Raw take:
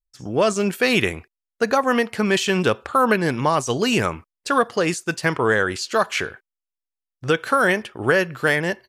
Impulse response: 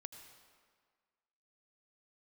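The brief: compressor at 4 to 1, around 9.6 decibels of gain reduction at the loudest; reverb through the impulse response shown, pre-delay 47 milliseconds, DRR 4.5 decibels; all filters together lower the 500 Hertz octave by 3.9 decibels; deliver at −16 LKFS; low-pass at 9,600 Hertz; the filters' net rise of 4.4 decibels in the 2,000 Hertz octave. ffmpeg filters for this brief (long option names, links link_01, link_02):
-filter_complex "[0:a]lowpass=9600,equalizer=frequency=500:width_type=o:gain=-5,equalizer=frequency=2000:width_type=o:gain=6,acompressor=threshold=-24dB:ratio=4,asplit=2[link_01][link_02];[1:a]atrim=start_sample=2205,adelay=47[link_03];[link_02][link_03]afir=irnorm=-1:irlink=0,volume=0.5dB[link_04];[link_01][link_04]amix=inputs=2:normalize=0,volume=10dB"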